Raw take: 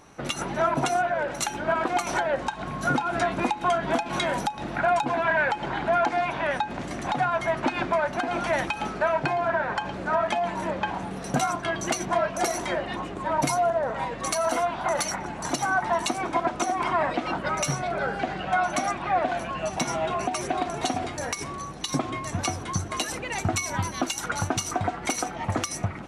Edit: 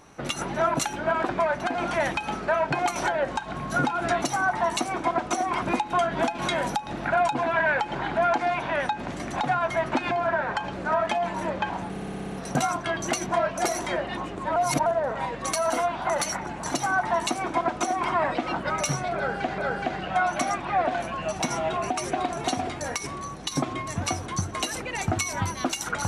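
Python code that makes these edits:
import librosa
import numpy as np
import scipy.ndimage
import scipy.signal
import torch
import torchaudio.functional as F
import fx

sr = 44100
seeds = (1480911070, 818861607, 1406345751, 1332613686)

y = fx.edit(x, sr, fx.cut(start_s=0.79, length_s=0.61),
    fx.move(start_s=7.82, length_s=1.5, to_s=1.9),
    fx.stutter(start_s=11.11, slice_s=0.06, count=8),
    fx.reverse_span(start_s=13.35, length_s=0.3),
    fx.duplicate(start_s=15.51, length_s=1.4, to_s=3.33),
    fx.repeat(start_s=17.95, length_s=0.42, count=2), tone=tone)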